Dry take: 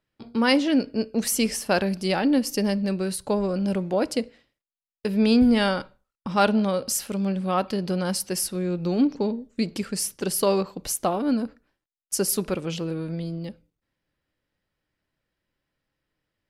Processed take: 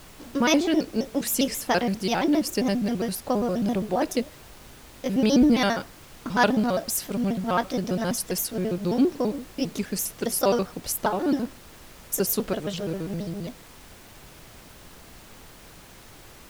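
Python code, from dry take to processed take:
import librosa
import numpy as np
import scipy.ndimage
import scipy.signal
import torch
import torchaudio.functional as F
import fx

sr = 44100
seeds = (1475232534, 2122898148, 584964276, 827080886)

y = fx.pitch_trill(x, sr, semitones=3.5, every_ms=67)
y = fx.dmg_noise_colour(y, sr, seeds[0], colour='pink', level_db=-47.0)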